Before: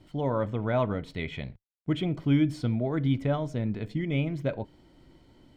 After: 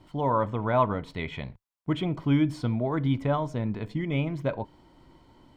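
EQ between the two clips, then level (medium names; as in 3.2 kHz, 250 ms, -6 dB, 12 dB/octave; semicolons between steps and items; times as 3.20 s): peaking EQ 1 kHz +10.5 dB 0.62 oct; 0.0 dB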